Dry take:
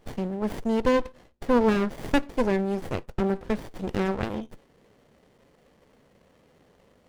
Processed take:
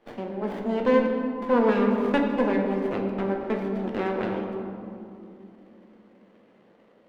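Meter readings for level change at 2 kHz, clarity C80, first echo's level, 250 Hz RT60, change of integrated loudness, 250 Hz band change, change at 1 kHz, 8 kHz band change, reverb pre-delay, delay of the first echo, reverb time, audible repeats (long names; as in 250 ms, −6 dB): +1.0 dB, 4.5 dB, no echo audible, 4.4 s, +1.5 dB, +1.5 dB, +1.5 dB, below −10 dB, 3 ms, no echo audible, 2.8 s, no echo audible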